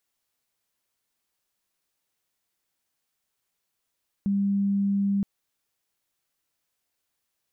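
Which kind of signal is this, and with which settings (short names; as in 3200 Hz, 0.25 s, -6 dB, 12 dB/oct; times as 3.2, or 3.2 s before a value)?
tone sine 199 Hz -21 dBFS 0.97 s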